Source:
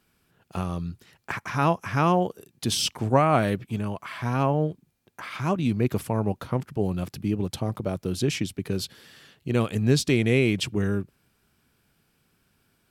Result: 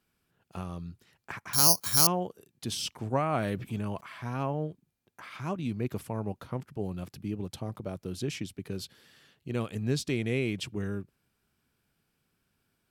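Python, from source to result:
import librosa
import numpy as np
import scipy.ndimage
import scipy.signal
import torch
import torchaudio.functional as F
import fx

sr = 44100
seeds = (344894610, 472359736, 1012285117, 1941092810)

y = fx.resample_bad(x, sr, factor=8, down='filtered', up='zero_stuff', at=(1.53, 2.07))
y = fx.env_flatten(y, sr, amount_pct=50, at=(3.36, 4.01))
y = y * librosa.db_to_amplitude(-8.5)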